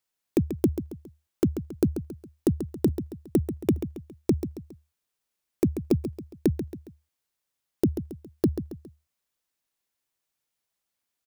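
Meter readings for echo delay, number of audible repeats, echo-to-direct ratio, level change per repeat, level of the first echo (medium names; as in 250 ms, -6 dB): 137 ms, 3, -9.0 dB, -7.5 dB, -10.0 dB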